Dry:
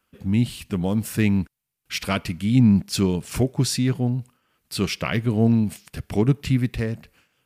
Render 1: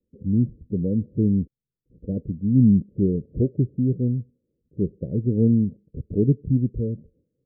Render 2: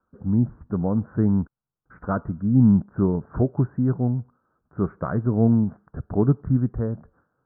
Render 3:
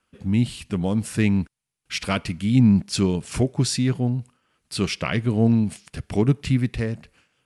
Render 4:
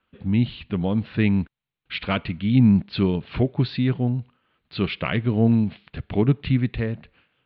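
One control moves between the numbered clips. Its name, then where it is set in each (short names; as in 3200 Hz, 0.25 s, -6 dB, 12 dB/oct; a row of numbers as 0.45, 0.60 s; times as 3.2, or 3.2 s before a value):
steep low-pass, frequency: 530, 1500, 11000, 4100 Hz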